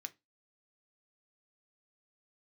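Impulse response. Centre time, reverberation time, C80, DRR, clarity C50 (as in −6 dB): 3 ms, 0.20 s, 32.0 dB, 8.0 dB, 23.0 dB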